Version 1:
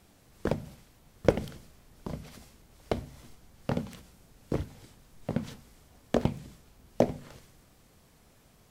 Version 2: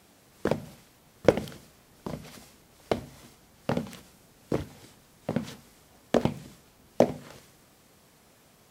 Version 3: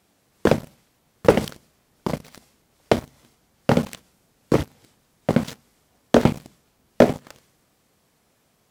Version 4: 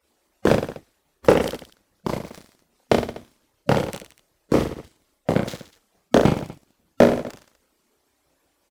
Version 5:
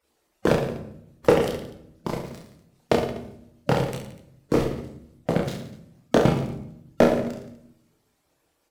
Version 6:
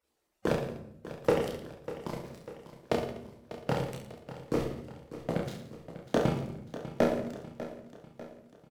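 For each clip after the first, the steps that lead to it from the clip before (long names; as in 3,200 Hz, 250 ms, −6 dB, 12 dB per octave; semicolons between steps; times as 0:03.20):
high-pass filter 190 Hz 6 dB per octave; level +4 dB
leveller curve on the samples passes 3
harmonic-percussive split with one part muted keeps percussive; reverse bouncing-ball delay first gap 30 ms, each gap 1.25×, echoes 5; level −1 dB
rectangular room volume 170 cubic metres, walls mixed, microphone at 0.52 metres; level −3.5 dB
repeating echo 596 ms, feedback 51%, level −14 dB; level −8.5 dB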